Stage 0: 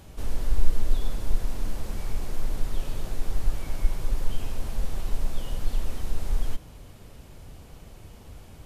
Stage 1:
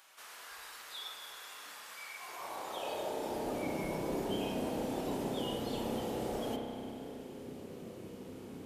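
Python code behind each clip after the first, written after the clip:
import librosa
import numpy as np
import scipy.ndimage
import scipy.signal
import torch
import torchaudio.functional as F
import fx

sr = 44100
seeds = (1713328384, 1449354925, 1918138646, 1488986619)

y = fx.filter_sweep_highpass(x, sr, from_hz=1300.0, to_hz=260.0, start_s=2.15, end_s=3.65, q=1.3)
y = fx.noise_reduce_blind(y, sr, reduce_db=9)
y = fx.rev_spring(y, sr, rt60_s=3.0, pass_ms=(31,), chirp_ms=30, drr_db=1.5)
y = y * 10.0 ** (4.5 / 20.0)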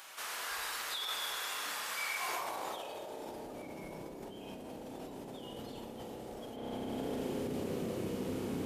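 y = fx.over_compress(x, sr, threshold_db=-46.0, ratio=-1.0)
y = y * 10.0 ** (4.5 / 20.0)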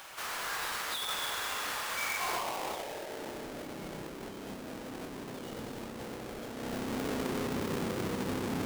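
y = fx.halfwave_hold(x, sr)
y = y * 10.0 ** (-1.0 / 20.0)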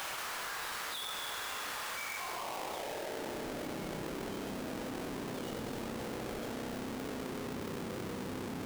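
y = fx.env_flatten(x, sr, amount_pct=100)
y = y * 10.0 ** (-7.5 / 20.0)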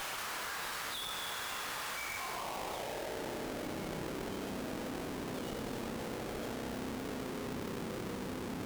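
y = fx.tube_stage(x, sr, drive_db=36.0, bias=0.65)
y = y * 10.0 ** (3.5 / 20.0)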